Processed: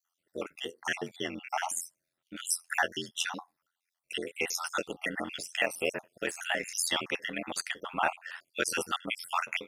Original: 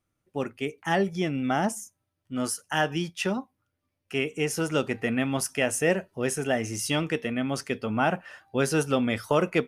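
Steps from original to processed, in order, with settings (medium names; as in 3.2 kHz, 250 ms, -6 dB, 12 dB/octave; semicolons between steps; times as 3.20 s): random holes in the spectrogram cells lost 52%; in parallel at -2.5 dB: compression, threshold -34 dBFS, peak gain reduction 14 dB; on the sum: ring modulator 43 Hz; 4.67–6.56 s: de-esser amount 80%; high-pass 1.3 kHz 6 dB/octave; trim +4 dB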